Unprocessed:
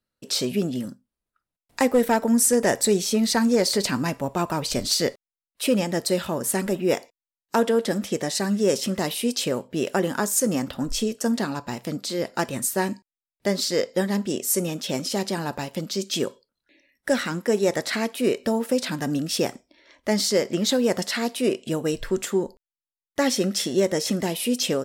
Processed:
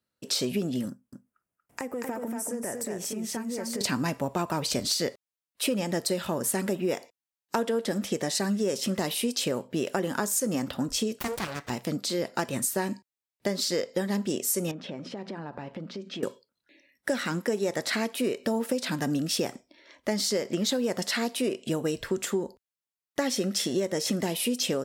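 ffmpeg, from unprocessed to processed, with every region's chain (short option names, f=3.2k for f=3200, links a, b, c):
-filter_complex "[0:a]asettb=1/sr,asplit=3[a][b][c];[a]atrim=end=0.894[d];[b]atrim=start=0.89:end=3.81,asetpts=PTS-STARTPTS,afade=t=in:d=0.004:c=qsin,afade=t=out:st=2.916:d=0.004:c=qsin,equalizer=f=4k:t=o:w=0.67:g=-14,acompressor=threshold=-31dB:ratio=8:attack=3.2:release=140:knee=1:detection=peak,aecho=1:1:235:0.631,atrim=end_sample=128772[e];[c]atrim=start=3.806[f];[d][e]acrossfade=d=0.004:c1=hsin:c2=qsin[g];[g][f]acrossfade=d=0.004:c1=qsin:c2=hsin,asettb=1/sr,asplit=3[h][i][j];[h]atrim=end=11.194[k];[i]atrim=start=11.19:end=11.7,asetpts=PTS-STARTPTS,afade=t=in:d=0.004:c=qsin,afade=t=out:st=0.506:d=0.004:c=qsin,highpass=f=270:p=1,aeval=exprs='abs(val(0))':c=same[l];[j]atrim=start=11.696[m];[k][l]acrossfade=d=0.004:c1=hsin:c2=qsin[n];[n][m]acrossfade=d=0.004:c1=qsin:c2=hsin,asettb=1/sr,asplit=3[o][p][q];[o]atrim=end=14.714[r];[p]atrim=start=14.71:end=16.23,asetpts=PTS-STARTPTS,afade=t=in:d=0.004:c=qsin,afade=t=out:st=1.516:d=0.004:c=qsin,lowpass=2k,bandreject=f=60:t=h:w=6,bandreject=f=120:t=h:w=6,bandreject=f=180:t=h:w=6,bandreject=f=240:t=h:w=6,acompressor=threshold=-33dB:ratio=8:attack=3.2:release=140:knee=1:detection=peak[s];[q]atrim=start=16.226[t];[r][s]acrossfade=d=0.004:c1=hsin:c2=qsin[u];[u][t]acrossfade=d=0.004:c1=qsin:c2=hsin,highpass=74,acompressor=threshold=-24dB:ratio=6"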